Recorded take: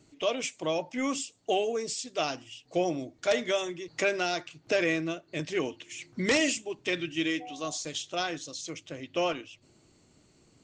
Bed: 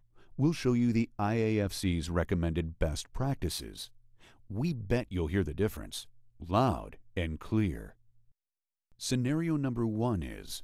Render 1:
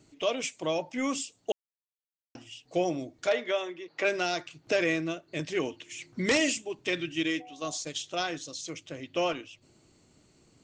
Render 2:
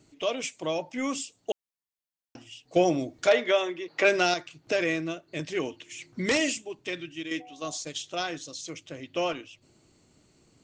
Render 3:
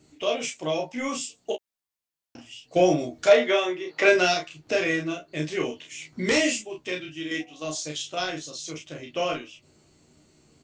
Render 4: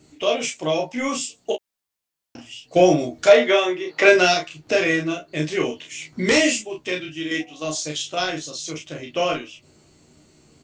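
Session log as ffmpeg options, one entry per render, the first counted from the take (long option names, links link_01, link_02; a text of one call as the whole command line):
ffmpeg -i in.wav -filter_complex "[0:a]asettb=1/sr,asplit=3[link_01][link_02][link_03];[link_01]atrim=end=3.294[link_04];[link_02]atrim=start=3.29:end=4.05,asetpts=PTS-STARTPTS,afade=type=in:duration=0.004:curve=qsin,afade=type=out:start_time=0.756:duration=0.004:curve=qsin,highpass=340,lowpass=3300[link_05];[link_03]atrim=start=4.046[link_06];[link_04][link_05]acrossfade=duration=0.004:curve1=hsin:curve2=qsin[link_07];[link_07][link_06]acrossfade=duration=0.004:curve1=qsin:curve2=hsin,asettb=1/sr,asplit=3[link_08][link_09][link_10];[link_08]atrim=end=7.234[link_11];[link_09]atrim=start=7.23:end=7.99,asetpts=PTS-STARTPTS,afade=type=in:duration=0.004:curve=qsin,afade=type=out:start_time=0.756:duration=0.004:curve=qsin,agate=range=-6dB:threshold=-40dB:ratio=16:release=100:detection=peak[link_12];[link_10]atrim=start=7.986[link_13];[link_11][link_12]acrossfade=duration=0.004:curve1=hsin:curve2=qsin[link_14];[link_14][link_13]acrossfade=duration=0.004:curve1=qsin:curve2=hsin,asplit=3[link_15][link_16][link_17];[link_15]atrim=end=1.52,asetpts=PTS-STARTPTS,afade=type=out:start_time=1.516:duration=0.004:curve=hsin[link_18];[link_16]atrim=start=1.52:end=2.35,asetpts=PTS-STARTPTS,volume=0[link_19];[link_17]atrim=start=2.35,asetpts=PTS-STARTPTS,afade=type=in:duration=0.004:curve=hsin[link_20];[link_18][link_19][link_20]concat=n=3:v=0:a=1" out.wav
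ffmpeg -i in.wav -filter_complex "[0:a]asettb=1/sr,asplit=3[link_01][link_02][link_03];[link_01]atrim=end=2.764[link_04];[link_02]atrim=start=2.76:end=4.34,asetpts=PTS-STARTPTS,afade=type=in:duration=0.004:curve=qsin,afade=type=out:start_time=1.576:duration=0.004:curve=qsin,acontrast=46[link_05];[link_03]atrim=start=4.336[link_06];[link_04][link_05]acrossfade=duration=0.004:curve1=hsin:curve2=qsin[link_07];[link_07][link_06]acrossfade=duration=0.004:curve1=qsin:curve2=hsin,asplit=2[link_08][link_09];[link_08]atrim=end=7.31,asetpts=PTS-STARTPTS,afade=type=out:start_time=6.41:duration=0.9:silence=0.375837[link_10];[link_09]atrim=start=7.31,asetpts=PTS-STARTPTS,afade=type=in:duration=0.004:curve=hsin:silence=0.375837[link_11];[link_10][link_11]concat=n=2:v=0:a=1" out.wav
ffmpeg -i in.wav -filter_complex "[0:a]asplit=2[link_01][link_02];[link_02]adelay=13,volume=-6dB[link_03];[link_01][link_03]amix=inputs=2:normalize=0,asplit=2[link_04][link_05];[link_05]aecho=0:1:33|49:0.708|0.158[link_06];[link_04][link_06]amix=inputs=2:normalize=0" out.wav
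ffmpeg -i in.wav -af "volume=5dB,alimiter=limit=-1dB:level=0:latency=1" out.wav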